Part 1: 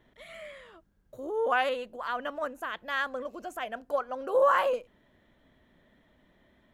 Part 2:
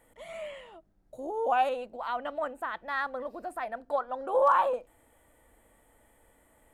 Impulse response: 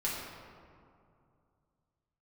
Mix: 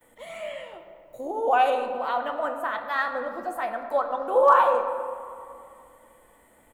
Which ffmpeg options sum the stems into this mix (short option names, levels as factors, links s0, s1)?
-filter_complex "[0:a]aemphasis=mode=production:type=riaa,volume=0.178,asplit=2[s0][s1];[s1]volume=0.251[s2];[1:a]lowshelf=f=88:g=-8.5,adelay=9.9,volume=1.19,asplit=3[s3][s4][s5];[s4]volume=0.501[s6];[s5]apad=whole_len=297051[s7];[s0][s7]sidechaincompress=threshold=0.0224:ratio=8:attack=16:release=1350[s8];[2:a]atrim=start_sample=2205[s9];[s2][s6]amix=inputs=2:normalize=0[s10];[s10][s9]afir=irnorm=-1:irlink=0[s11];[s8][s3][s11]amix=inputs=3:normalize=0"